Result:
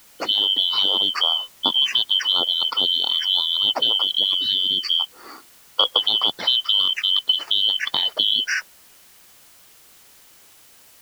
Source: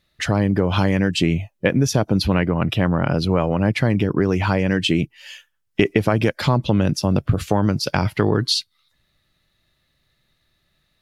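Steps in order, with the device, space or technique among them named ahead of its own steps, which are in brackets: split-band scrambled radio (four-band scrambler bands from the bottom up 2413; BPF 330–3200 Hz; white noise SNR 28 dB); 4.34–5 Chebyshev band-stop 260–2400 Hz, order 2; gain +1 dB

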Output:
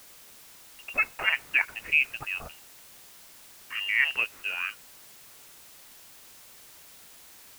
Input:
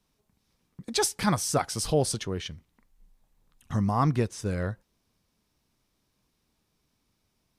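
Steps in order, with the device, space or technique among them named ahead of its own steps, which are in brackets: scrambled radio voice (BPF 350–3200 Hz; inverted band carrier 3000 Hz; white noise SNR 18 dB); gain +3 dB

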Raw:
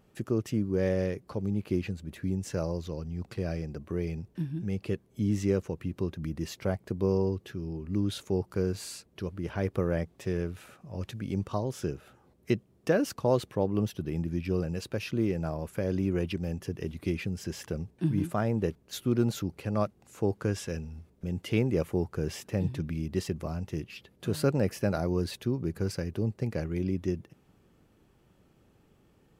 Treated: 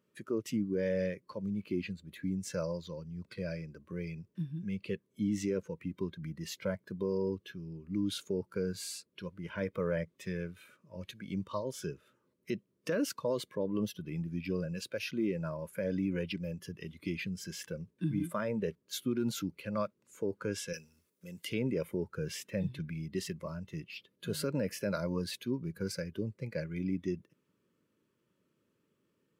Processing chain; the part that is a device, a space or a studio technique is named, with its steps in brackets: spectral noise reduction 11 dB; PA system with an anti-feedback notch (HPF 170 Hz 12 dB/oct; Butterworth band-stop 760 Hz, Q 2.6; limiter -23.5 dBFS, peak gain reduction 9.5 dB); 20.73–21.45 RIAA curve recording

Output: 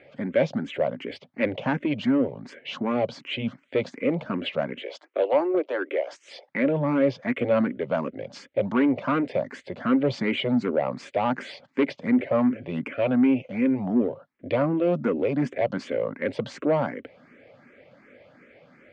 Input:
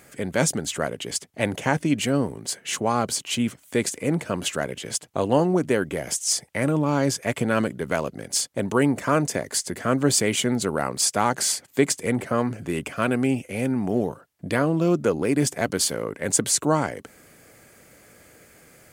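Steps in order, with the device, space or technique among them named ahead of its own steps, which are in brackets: 4.83–6.49 steep high-pass 310 Hz 72 dB/oct; barber-pole phaser into a guitar amplifier (endless phaser +2.7 Hz; soft clip -18.5 dBFS, distortion -15 dB; speaker cabinet 76–3400 Hz, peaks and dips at 79 Hz -9 dB, 250 Hz +8 dB, 560 Hz +9 dB, 2200 Hz +4 dB)

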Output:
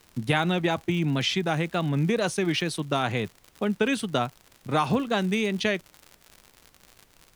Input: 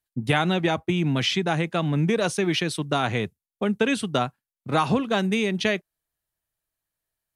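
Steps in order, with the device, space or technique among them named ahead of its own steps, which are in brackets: vinyl LP (wow and flutter; crackle 97/s -32 dBFS; pink noise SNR 34 dB); gain -2 dB

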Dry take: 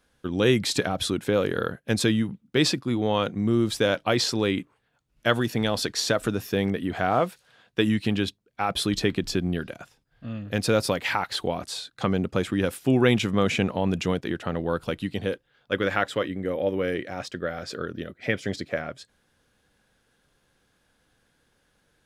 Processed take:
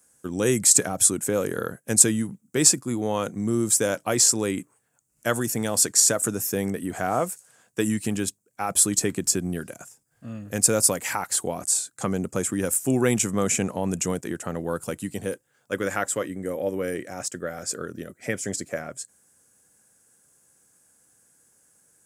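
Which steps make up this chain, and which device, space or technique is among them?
budget condenser microphone (HPF 95 Hz; resonant high shelf 5400 Hz +14 dB, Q 3); gain -1.5 dB

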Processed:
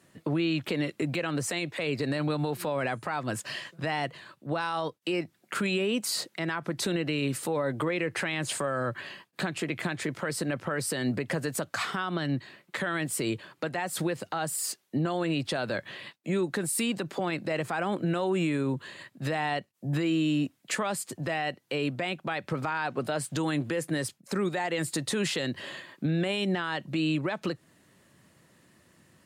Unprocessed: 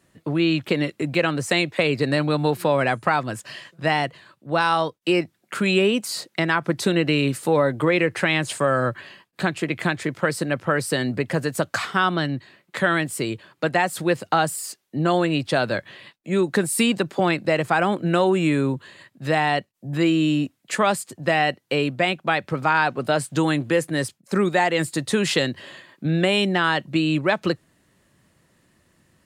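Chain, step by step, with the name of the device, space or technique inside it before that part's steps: podcast mastering chain (HPF 95 Hz 12 dB/oct; compressor 3:1, threshold -25 dBFS, peak gain reduction 8.5 dB; limiter -21.5 dBFS, peak gain reduction 11 dB; gain +1.5 dB; MP3 96 kbps 48000 Hz)

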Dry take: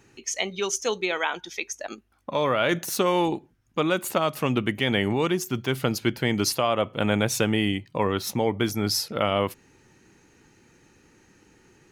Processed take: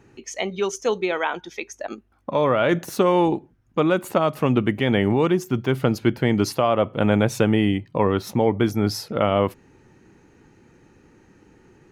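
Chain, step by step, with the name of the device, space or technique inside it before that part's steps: through cloth (high shelf 2100 Hz -12.5 dB); gain +5.5 dB

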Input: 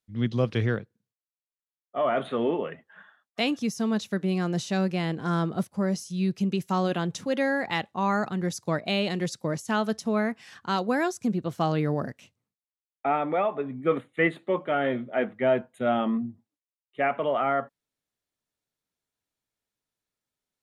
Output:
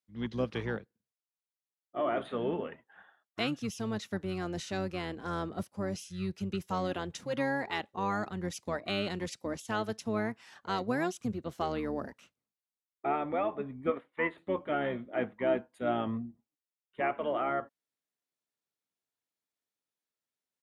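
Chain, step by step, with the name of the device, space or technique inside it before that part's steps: HPF 210 Hz 12 dB/oct; octave pedal (harmoniser -12 st -8 dB); 13.9–14.38 tone controls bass -13 dB, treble -15 dB; gain -6.5 dB

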